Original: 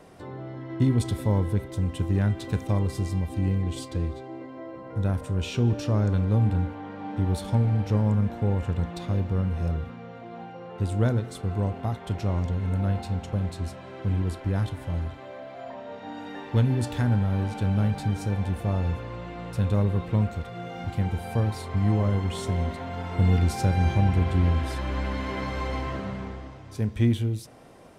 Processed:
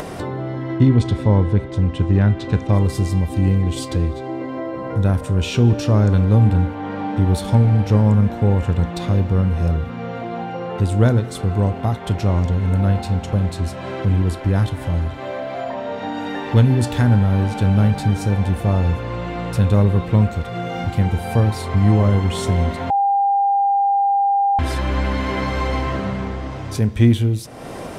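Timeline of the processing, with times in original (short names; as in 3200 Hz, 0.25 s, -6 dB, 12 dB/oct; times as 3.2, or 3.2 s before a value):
0.78–2.73 air absorption 110 m
22.9–24.59 bleep 799 Hz -22 dBFS
whole clip: upward compressor, threshold -28 dBFS; gain +8.5 dB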